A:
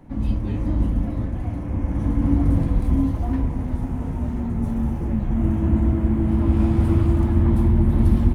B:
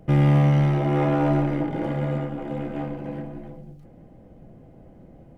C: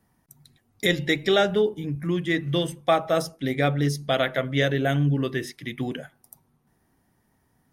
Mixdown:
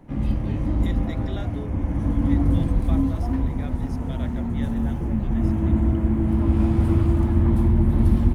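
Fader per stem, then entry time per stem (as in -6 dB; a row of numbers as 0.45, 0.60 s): -1.0, -16.5, -19.0 dB; 0.00, 0.00, 0.00 s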